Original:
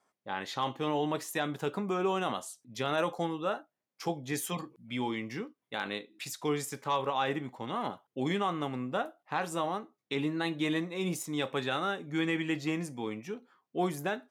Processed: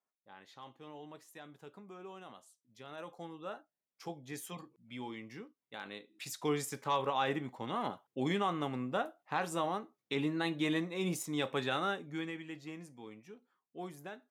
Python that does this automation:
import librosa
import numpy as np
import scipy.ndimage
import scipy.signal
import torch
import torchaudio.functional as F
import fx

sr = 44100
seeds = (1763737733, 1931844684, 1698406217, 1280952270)

y = fx.gain(x, sr, db=fx.line((2.77, -19.0), (3.56, -10.0), (5.95, -10.0), (6.36, -2.0), (11.93, -2.0), (12.41, -13.5)))